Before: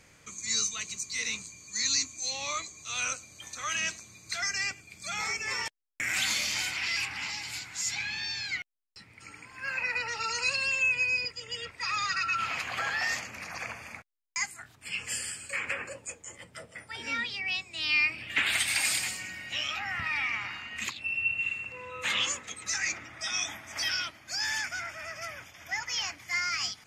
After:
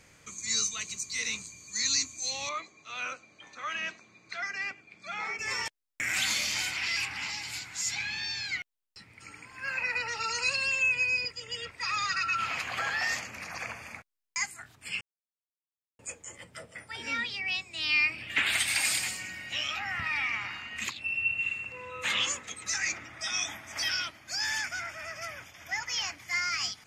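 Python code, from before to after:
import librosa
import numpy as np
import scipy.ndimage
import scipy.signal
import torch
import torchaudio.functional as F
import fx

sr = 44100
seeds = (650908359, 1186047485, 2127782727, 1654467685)

y = fx.bandpass_edges(x, sr, low_hz=210.0, high_hz=2500.0, at=(2.49, 5.39))
y = fx.edit(y, sr, fx.silence(start_s=15.01, length_s=0.98), tone=tone)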